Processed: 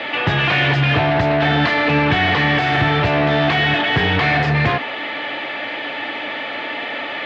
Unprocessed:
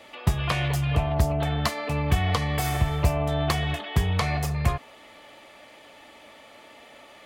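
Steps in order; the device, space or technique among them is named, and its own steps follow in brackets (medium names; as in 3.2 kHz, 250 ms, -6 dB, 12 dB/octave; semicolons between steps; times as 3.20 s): overdrive pedal into a guitar cabinet (overdrive pedal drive 33 dB, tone 4.3 kHz, clips at -9 dBFS; cabinet simulation 92–3700 Hz, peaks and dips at 110 Hz +8 dB, 160 Hz +4 dB, 290 Hz +7 dB, 600 Hz -3 dB, 1.1 kHz -6 dB, 1.7 kHz +4 dB)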